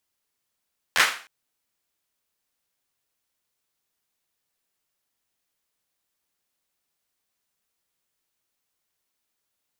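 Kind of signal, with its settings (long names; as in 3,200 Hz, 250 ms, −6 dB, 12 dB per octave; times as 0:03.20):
synth clap length 0.31 s, apart 12 ms, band 1,700 Hz, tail 0.41 s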